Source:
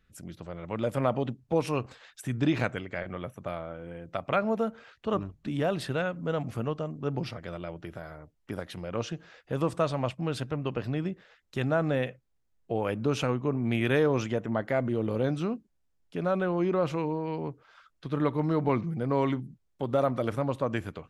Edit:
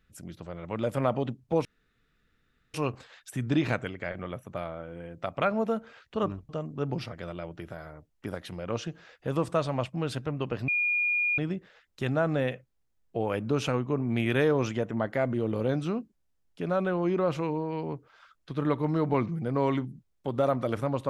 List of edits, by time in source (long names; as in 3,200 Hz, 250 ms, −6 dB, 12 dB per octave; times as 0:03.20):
0:01.65: splice in room tone 1.09 s
0:05.40–0:06.74: remove
0:10.93: insert tone 2,430 Hz −23.5 dBFS 0.70 s